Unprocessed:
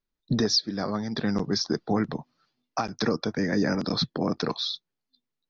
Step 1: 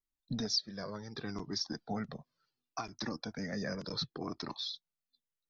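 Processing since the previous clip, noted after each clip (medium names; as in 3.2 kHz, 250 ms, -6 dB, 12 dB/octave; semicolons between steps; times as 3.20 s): treble shelf 5.1 kHz +6.5 dB; Shepard-style flanger falling 0.68 Hz; trim -7.5 dB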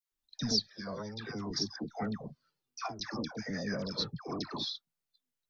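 phase dispersion lows, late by 119 ms, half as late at 980 Hz; trim +2 dB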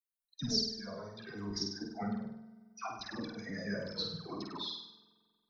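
expander on every frequency bin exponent 1.5; flutter echo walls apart 8.5 m, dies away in 0.68 s; spring tank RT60 2 s, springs 45 ms, chirp 80 ms, DRR 16 dB; trim -2 dB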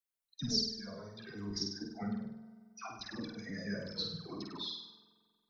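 dynamic bell 840 Hz, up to -6 dB, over -56 dBFS, Q 0.82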